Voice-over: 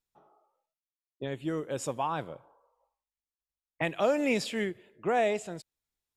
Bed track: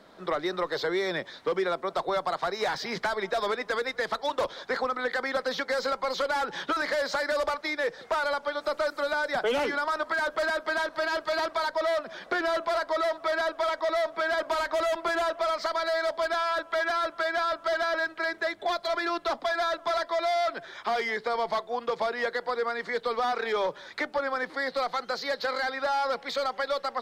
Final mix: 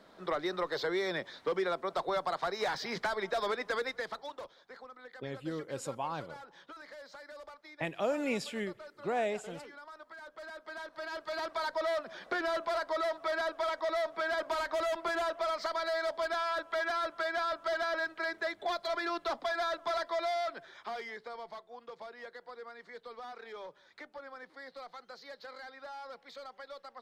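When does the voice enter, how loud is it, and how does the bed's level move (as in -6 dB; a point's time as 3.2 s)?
4.00 s, -5.5 dB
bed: 3.85 s -4.5 dB
4.62 s -21.5 dB
10.19 s -21.5 dB
11.68 s -5.5 dB
20.2 s -5.5 dB
21.62 s -18 dB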